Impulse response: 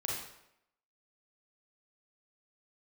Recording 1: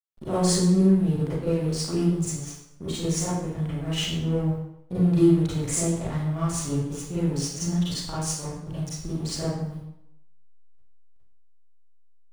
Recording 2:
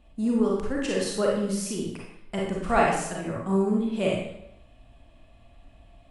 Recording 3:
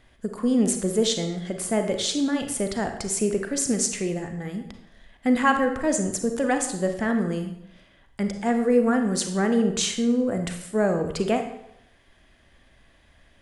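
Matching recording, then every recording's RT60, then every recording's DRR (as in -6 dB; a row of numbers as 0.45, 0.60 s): 2; 0.80, 0.80, 0.80 s; -11.0, -3.5, 5.5 dB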